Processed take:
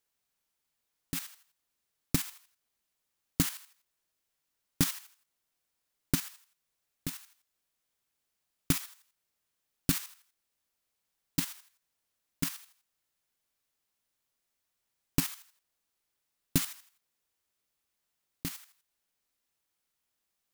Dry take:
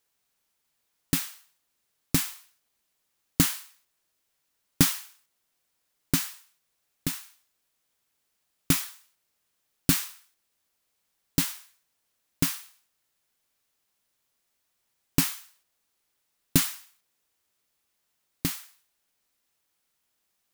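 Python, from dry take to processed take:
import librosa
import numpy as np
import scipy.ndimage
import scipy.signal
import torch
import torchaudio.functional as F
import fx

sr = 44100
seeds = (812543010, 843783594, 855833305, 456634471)

y = fx.block_float(x, sr, bits=5, at=(16.6, 18.62))
y = fx.low_shelf(y, sr, hz=82.0, db=3.5)
y = fx.level_steps(y, sr, step_db=10)
y = y * 10.0 ** (-3.0 / 20.0)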